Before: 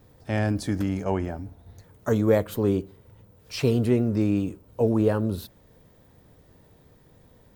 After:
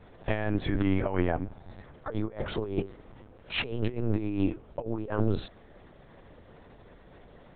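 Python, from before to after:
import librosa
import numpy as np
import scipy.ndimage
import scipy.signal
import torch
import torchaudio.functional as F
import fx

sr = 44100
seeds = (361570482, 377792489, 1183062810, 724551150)

y = fx.low_shelf(x, sr, hz=350.0, db=-9.0)
y = fx.over_compress(y, sr, threshold_db=-32.0, ratio=-0.5)
y = fx.air_absorb(y, sr, metres=150.0)
y = fx.lpc_vocoder(y, sr, seeds[0], excitation='pitch_kept', order=10)
y = y * 10.0 ** (5.0 / 20.0)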